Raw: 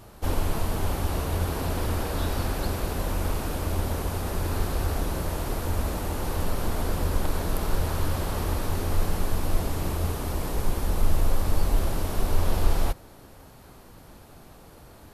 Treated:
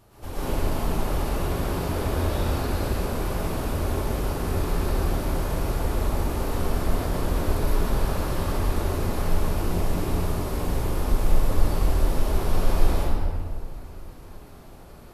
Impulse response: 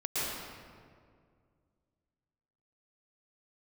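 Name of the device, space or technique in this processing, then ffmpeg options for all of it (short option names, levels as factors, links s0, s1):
stairwell: -filter_complex "[1:a]atrim=start_sample=2205[s0];[0:a][s0]afir=irnorm=-1:irlink=0,volume=0.501"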